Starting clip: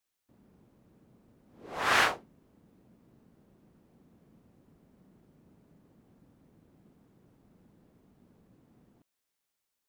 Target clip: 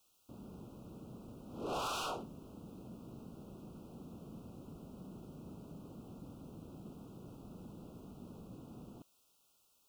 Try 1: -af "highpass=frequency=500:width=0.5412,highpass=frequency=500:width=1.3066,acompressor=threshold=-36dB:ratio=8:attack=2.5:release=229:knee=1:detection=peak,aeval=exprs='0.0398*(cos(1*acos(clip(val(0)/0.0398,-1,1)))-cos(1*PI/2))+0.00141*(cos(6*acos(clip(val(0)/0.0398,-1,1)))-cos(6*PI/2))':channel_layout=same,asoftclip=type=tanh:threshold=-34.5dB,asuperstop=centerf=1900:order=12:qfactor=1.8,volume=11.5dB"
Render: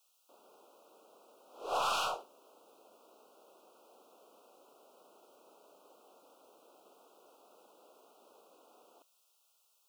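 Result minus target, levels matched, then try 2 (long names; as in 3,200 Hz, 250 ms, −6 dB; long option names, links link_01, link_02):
500 Hz band −11.5 dB; soft clipping: distortion −12 dB
-af "acompressor=threshold=-36dB:ratio=8:attack=2.5:release=229:knee=1:detection=peak,aeval=exprs='0.0398*(cos(1*acos(clip(val(0)/0.0398,-1,1)))-cos(1*PI/2))+0.00141*(cos(6*acos(clip(val(0)/0.0398,-1,1)))-cos(6*PI/2))':channel_layout=same,asoftclip=type=tanh:threshold=-46dB,asuperstop=centerf=1900:order=12:qfactor=1.8,volume=11.5dB"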